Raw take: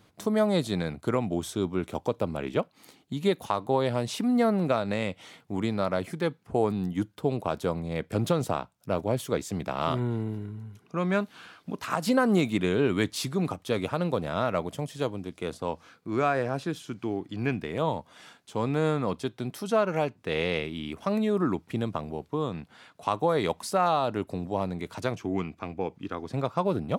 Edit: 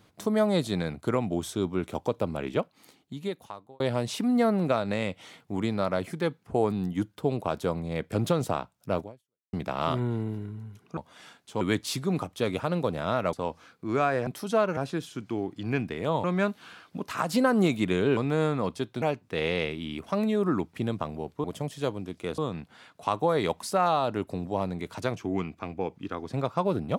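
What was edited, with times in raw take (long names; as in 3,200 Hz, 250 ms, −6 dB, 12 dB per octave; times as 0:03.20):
0:02.52–0:03.80: fade out linear
0:09.01–0:09.53: fade out exponential
0:10.97–0:12.90: swap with 0:17.97–0:18.61
0:14.62–0:15.56: move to 0:22.38
0:19.46–0:19.96: move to 0:16.50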